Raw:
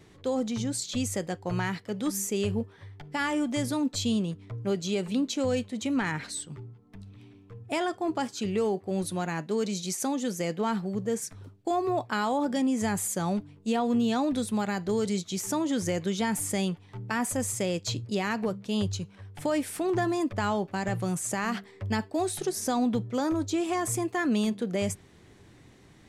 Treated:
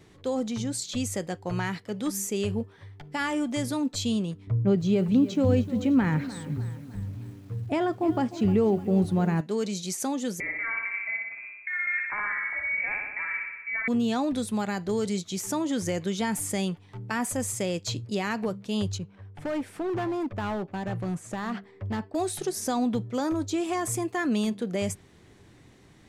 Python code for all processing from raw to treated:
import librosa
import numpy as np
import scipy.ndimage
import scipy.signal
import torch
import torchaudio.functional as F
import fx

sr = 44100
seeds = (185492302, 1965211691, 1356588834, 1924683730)

y = fx.chain(x, sr, fx.highpass(hz=55.0, slope=12),
    fx.riaa(side='playback'),
    fx.echo_crushed(ms=304, feedback_pct=55, bits=8, wet_db=-14.5), at=(4.47, 9.41))
y = fx.chain(y, sr, fx.level_steps(step_db=16),
    fx.room_flutter(wall_m=10.5, rt60_s=1.1),
    fx.freq_invert(carrier_hz=2500), at=(10.4, 13.88))
y = fx.chain(y, sr, fx.lowpass(hz=1600.0, slope=6),
    fx.clip_hard(threshold_db=-26.0), at=(18.98, 22.15))